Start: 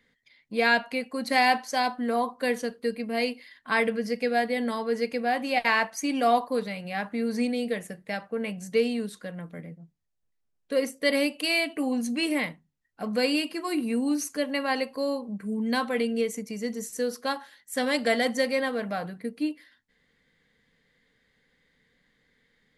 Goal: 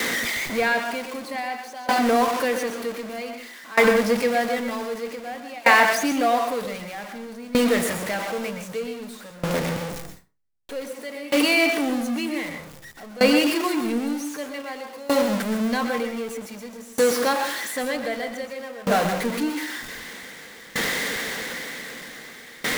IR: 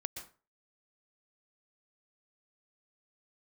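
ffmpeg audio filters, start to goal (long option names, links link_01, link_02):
-filter_complex "[0:a]aeval=exprs='val(0)+0.5*0.0668*sgn(val(0))':channel_layout=same,acrossover=split=200|2800[link_01][link_02][link_03];[link_01]aeval=exprs='0.0531*(cos(1*acos(clip(val(0)/0.0531,-1,1)))-cos(1*PI/2))+0.0188*(cos(3*acos(clip(val(0)/0.0531,-1,1)))-cos(3*PI/2))':channel_layout=same[link_04];[link_03]alimiter=level_in=1dB:limit=-24dB:level=0:latency=1:release=304,volume=-1dB[link_05];[link_04][link_02][link_05]amix=inputs=3:normalize=0[link_06];[1:a]atrim=start_sample=2205[link_07];[link_06][link_07]afir=irnorm=-1:irlink=0,aeval=exprs='val(0)*pow(10,-22*if(lt(mod(0.53*n/s,1),2*abs(0.53)/1000),1-mod(0.53*n/s,1)/(2*abs(0.53)/1000),(mod(0.53*n/s,1)-2*abs(0.53)/1000)/(1-2*abs(0.53)/1000))/20)':channel_layout=same,volume=8.5dB"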